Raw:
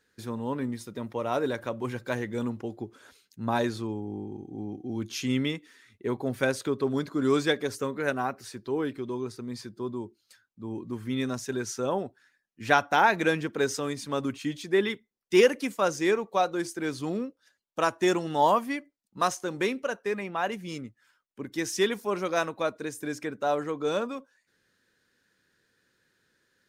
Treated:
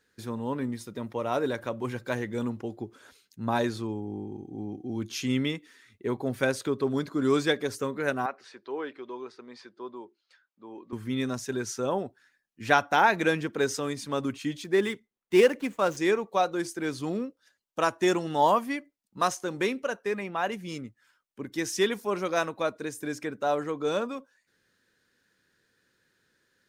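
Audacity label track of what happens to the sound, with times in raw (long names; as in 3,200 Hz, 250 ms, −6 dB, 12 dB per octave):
8.260000	10.930000	band-pass filter 490–3,400 Hz
14.640000	15.970000	running median over 9 samples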